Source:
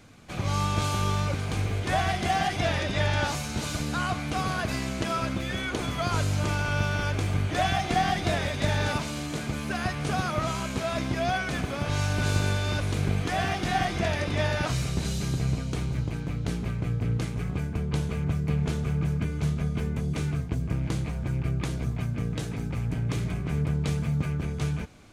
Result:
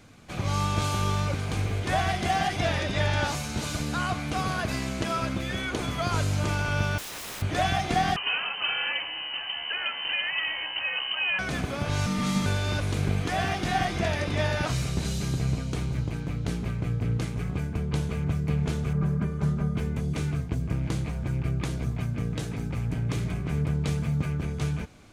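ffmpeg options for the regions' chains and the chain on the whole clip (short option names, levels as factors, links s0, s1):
-filter_complex "[0:a]asettb=1/sr,asplit=3[s0][s1][s2];[s0]atrim=end=6.984[s3];[s1]atrim=start=6.98:end=7.42,asetpts=PTS-STARTPTS,afade=t=in:d=0.004:c=qsin,afade=t=out:st=0.436:d=0.004:c=qsin,lowshelf=f=190:g=-3,aeval=exprs='(mod(44.7*val(0)+1,2)-1)/44.7':c=same,bandreject=f=4500:w=24[s4];[s2]atrim=start=7.416[s5];[s3][s4]acrossfade=d=0.004:c1=hsin:c2=qsin[s6];[s6][s5]acrossfade=d=0.004:c1=qsin:c2=hsin,asettb=1/sr,asplit=3[s7][s8][s9];[s7]atrim=end=8.164[s10];[s8]atrim=start=8.16:end=11.39,asetpts=PTS-STARTPTS,afade=t=in:d=0.004:c=qsin,afade=t=out:st=3.226:d=0.004:c=qsin,highpass=150,lowpass=f=2700:t=q:w=0.5098,lowpass=f=2700:t=q:w=0.6013,lowpass=f=2700:t=q:w=0.9,lowpass=f=2700:t=q:w=2.563,afreqshift=-3200[s11];[s9]atrim=start=11.386[s12];[s10][s11]acrossfade=d=0.004:c1=hsin:c2=qsin[s13];[s13][s12]acrossfade=d=0.004:c1=qsin:c2=hsin,asettb=1/sr,asplit=3[s14][s15][s16];[s14]atrim=end=12.064[s17];[s15]atrim=start=12.06:end=12.46,asetpts=PTS-STARTPTS,afade=t=in:d=0.004:c=qsin,afade=t=out:st=0.396:d=0.004:c=qsin,equalizer=f=260:t=o:w=1.1:g=-9.5,afreqshift=-290[s18];[s16]atrim=start=12.456[s19];[s17][s18]acrossfade=d=0.004:c1=hsin:c2=qsin[s20];[s20][s19]acrossfade=d=0.004:c1=qsin:c2=hsin,asettb=1/sr,asplit=3[s21][s22][s23];[s21]atrim=end=18.934[s24];[s22]atrim=start=18.93:end=19.77,asetpts=PTS-STARTPTS,afade=t=in:d=0.004:c=qsin,afade=t=out:st=0.836:d=0.004:c=qsin,highshelf=f=1900:t=q:w=1.5:g=-7.5,aecho=1:1:5.1:0.59,atrim=end_sample=37044[s25];[s23]atrim=start=19.766[s26];[s24][s25]acrossfade=d=0.004:c1=hsin:c2=qsin[s27];[s27][s26]acrossfade=d=0.004:c1=qsin:c2=hsin"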